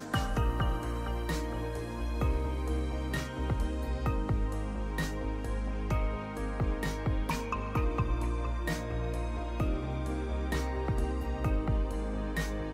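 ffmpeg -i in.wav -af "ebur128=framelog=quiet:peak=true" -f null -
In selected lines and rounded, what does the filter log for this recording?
Integrated loudness:
  I:         -33.8 LUFS
  Threshold: -43.8 LUFS
Loudness range:
  LRA:         0.8 LU
  Threshold: -53.9 LUFS
  LRA low:   -34.3 LUFS
  LRA high:  -33.5 LUFS
True peak:
  Peak:      -17.3 dBFS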